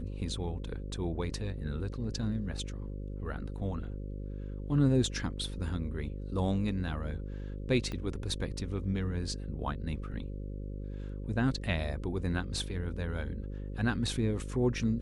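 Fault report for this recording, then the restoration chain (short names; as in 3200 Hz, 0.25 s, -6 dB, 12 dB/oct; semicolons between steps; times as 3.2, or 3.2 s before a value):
buzz 50 Hz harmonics 11 -39 dBFS
7.92 pop -25 dBFS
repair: de-click; de-hum 50 Hz, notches 11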